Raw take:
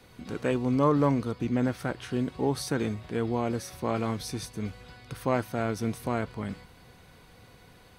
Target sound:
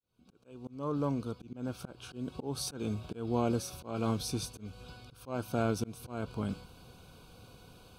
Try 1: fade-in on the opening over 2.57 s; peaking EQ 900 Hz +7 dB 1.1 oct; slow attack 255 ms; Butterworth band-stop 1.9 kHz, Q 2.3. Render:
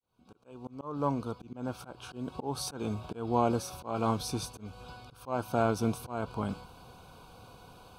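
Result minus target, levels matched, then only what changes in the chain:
1 kHz band +5.0 dB
change: peaking EQ 900 Hz -2.5 dB 1.1 oct

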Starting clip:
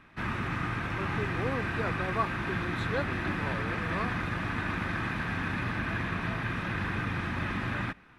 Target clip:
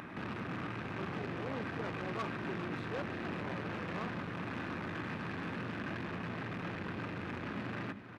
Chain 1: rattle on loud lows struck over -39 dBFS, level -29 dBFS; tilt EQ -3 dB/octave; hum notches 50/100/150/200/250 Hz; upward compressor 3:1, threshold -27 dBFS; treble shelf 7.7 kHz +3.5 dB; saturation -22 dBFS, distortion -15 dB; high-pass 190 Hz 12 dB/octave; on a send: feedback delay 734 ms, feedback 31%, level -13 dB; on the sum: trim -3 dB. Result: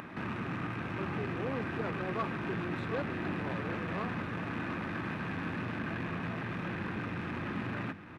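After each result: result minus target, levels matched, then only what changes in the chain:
echo 338 ms late; saturation: distortion -7 dB
change: feedback delay 396 ms, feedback 31%, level -13 dB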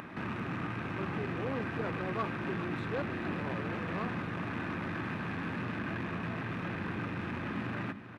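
saturation: distortion -7 dB
change: saturation -29.5 dBFS, distortion -8 dB

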